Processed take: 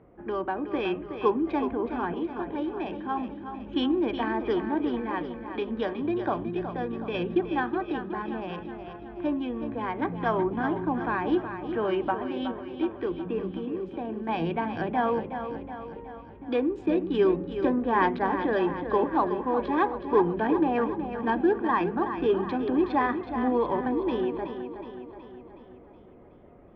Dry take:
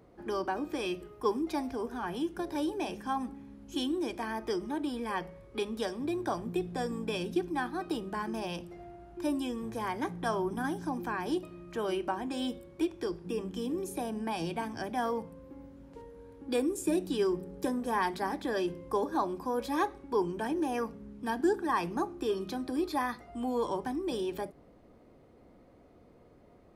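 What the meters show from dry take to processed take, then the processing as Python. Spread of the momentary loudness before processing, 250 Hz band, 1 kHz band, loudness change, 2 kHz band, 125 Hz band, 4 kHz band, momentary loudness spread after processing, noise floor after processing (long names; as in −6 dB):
7 LU, +6.0 dB, +6.0 dB, +5.5 dB, +5.5 dB, +5.5 dB, −0.5 dB, 10 LU, −48 dBFS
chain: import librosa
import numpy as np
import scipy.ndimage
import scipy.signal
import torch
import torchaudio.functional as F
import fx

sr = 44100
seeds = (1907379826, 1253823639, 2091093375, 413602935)

y = fx.wiener(x, sr, points=9)
y = scipy.signal.sosfilt(scipy.signal.butter(4, 3200.0, 'lowpass', fs=sr, output='sos'), y)
y = fx.tremolo_random(y, sr, seeds[0], hz=1.4, depth_pct=55)
y = fx.echo_feedback(y, sr, ms=370, feedback_pct=56, wet_db=-9.0)
y = F.gain(torch.from_numpy(y), 7.5).numpy()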